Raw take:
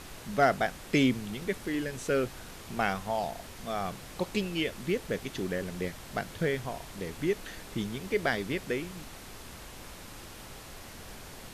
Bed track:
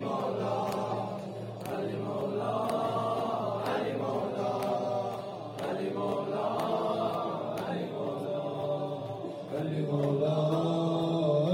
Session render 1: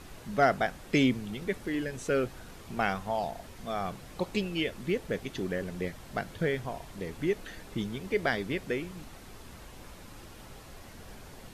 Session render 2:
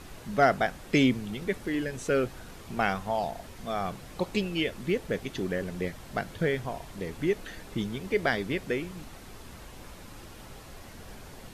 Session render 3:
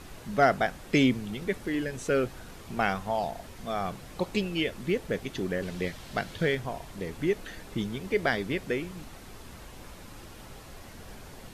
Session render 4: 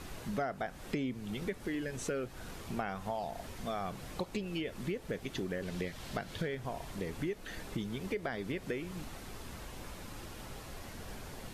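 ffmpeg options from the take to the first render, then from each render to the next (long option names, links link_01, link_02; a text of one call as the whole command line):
ffmpeg -i in.wav -af "afftdn=noise_reduction=6:noise_floor=-47" out.wav
ffmpeg -i in.wav -af "volume=2dB" out.wav
ffmpeg -i in.wav -filter_complex "[0:a]asettb=1/sr,asplit=3[link_01][link_02][link_03];[link_01]atrim=end=5.624[link_04];[link_02]atrim=start=5.62:end=6.55,asetpts=PTS-STARTPTS,afade=type=in:duration=0.004:curve=qsin,afade=type=out:start_time=0.926:duration=0.004:curve=qsin,equalizer=frequency=3800:width=0.81:gain=6[link_05];[link_03]atrim=start=6.546[link_06];[link_04][link_05]acrossfade=duration=0.004:curve1=hsin:curve2=qsin[link_07];[link_07][link_06]acrossfade=duration=0.004:curve1=qsin:curve2=hsin" out.wav
ffmpeg -i in.wav -filter_complex "[0:a]acrossover=split=1600[link_01][link_02];[link_02]alimiter=level_in=3dB:limit=-24dB:level=0:latency=1:release=118,volume=-3dB[link_03];[link_01][link_03]amix=inputs=2:normalize=0,acompressor=threshold=-34dB:ratio=5" out.wav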